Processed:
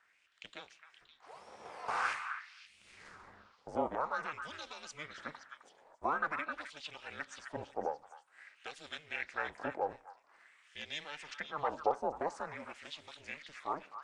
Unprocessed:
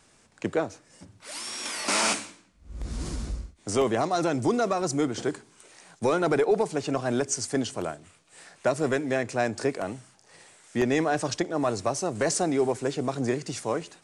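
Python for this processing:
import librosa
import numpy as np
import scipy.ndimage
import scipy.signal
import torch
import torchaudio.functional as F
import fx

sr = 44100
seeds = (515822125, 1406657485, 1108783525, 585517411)

y = fx.filter_lfo_bandpass(x, sr, shape='sine', hz=0.48, low_hz=650.0, high_hz=3400.0, q=4.1)
y = y * np.sin(2.0 * np.pi * 150.0 * np.arange(len(y)) / sr)
y = fx.echo_stepped(y, sr, ms=261, hz=1500.0, octaves=1.4, feedback_pct=70, wet_db=-6)
y = y * 10.0 ** (3.0 / 20.0)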